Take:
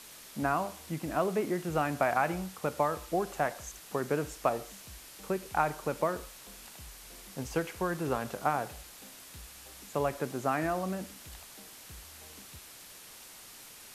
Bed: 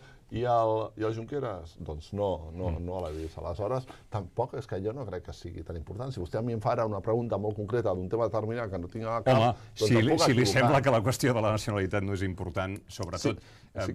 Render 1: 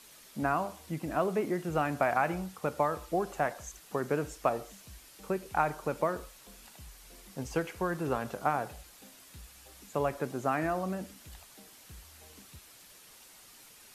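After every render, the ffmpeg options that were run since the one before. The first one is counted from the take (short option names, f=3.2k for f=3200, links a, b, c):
-af "afftdn=nr=6:nf=-51"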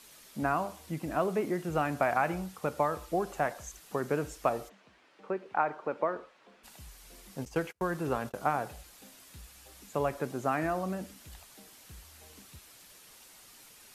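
-filter_complex "[0:a]asplit=3[a][b][c];[a]afade=t=out:st=4.68:d=0.02[d];[b]highpass=270,lowpass=2.2k,afade=t=in:st=4.68:d=0.02,afade=t=out:st=6.63:d=0.02[e];[c]afade=t=in:st=6.63:d=0.02[f];[d][e][f]amix=inputs=3:normalize=0,asettb=1/sr,asplit=3[g][h][i];[g]atrim=end=7.454[j];[h]atrim=start=7.45:end=8.34,asetpts=PTS-STARTPTS,afade=t=in:d=0.004:c=qsin,afade=t=out:st=0.886:d=0.004:c=qsin,agate=range=-36dB:threshold=-43dB:ratio=16:release=100:detection=peak[k];[i]atrim=start=8.336[l];[j][k]acrossfade=d=0.004:c1=hsin:c2=qsin[m];[m][l]acrossfade=d=0.004:c1=qsin:c2=hsin"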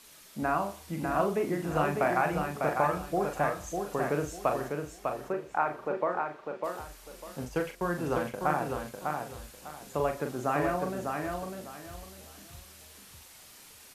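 -filter_complex "[0:a]asplit=2[a][b];[b]adelay=40,volume=-6dB[c];[a][c]amix=inputs=2:normalize=0,aecho=1:1:600|1200|1800:0.596|0.149|0.0372"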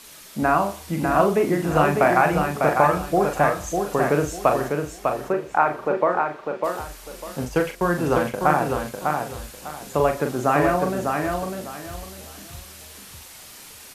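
-af "volume=9.5dB"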